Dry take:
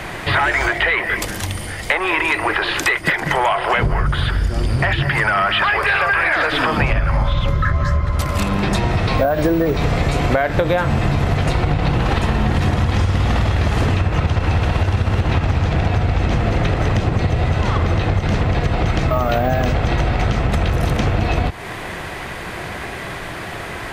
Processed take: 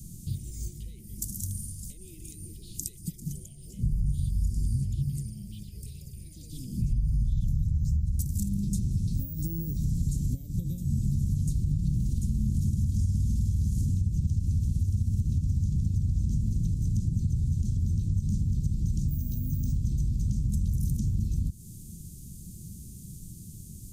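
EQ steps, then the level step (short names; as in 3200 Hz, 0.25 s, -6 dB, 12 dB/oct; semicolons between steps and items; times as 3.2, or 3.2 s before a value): elliptic band-stop 200–6600 Hz, stop band 80 dB; high shelf 11000 Hz +11 dB; -8.0 dB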